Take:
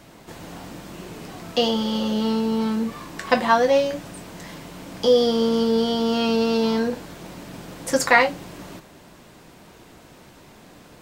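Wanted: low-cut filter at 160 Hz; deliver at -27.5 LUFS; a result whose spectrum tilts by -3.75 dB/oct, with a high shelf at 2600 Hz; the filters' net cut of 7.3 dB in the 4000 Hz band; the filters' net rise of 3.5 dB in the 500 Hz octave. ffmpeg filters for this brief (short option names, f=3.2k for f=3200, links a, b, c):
-af "highpass=160,equalizer=f=500:t=o:g=4,highshelf=f=2.6k:g=-3.5,equalizer=f=4k:t=o:g=-7,volume=-8dB"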